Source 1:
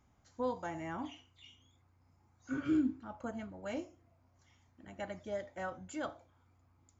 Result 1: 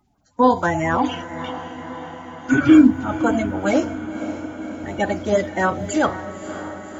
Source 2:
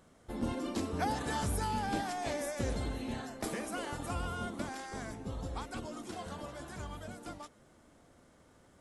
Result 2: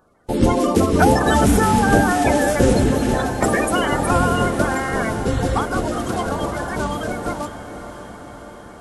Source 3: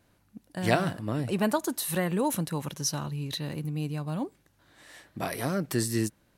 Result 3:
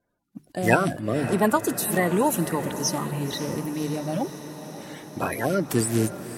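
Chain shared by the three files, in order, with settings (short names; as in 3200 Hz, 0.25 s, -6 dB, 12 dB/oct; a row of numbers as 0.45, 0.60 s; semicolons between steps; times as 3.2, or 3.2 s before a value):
bin magnitudes rounded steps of 30 dB; notches 50/100/150 Hz; gate -57 dBFS, range -16 dB; dynamic EQ 4300 Hz, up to -5 dB, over -56 dBFS, Q 1.9; diffused feedback echo 0.552 s, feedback 68%, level -12 dB; normalise peaks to -2 dBFS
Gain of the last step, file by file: +21.0, +20.0, +6.0 dB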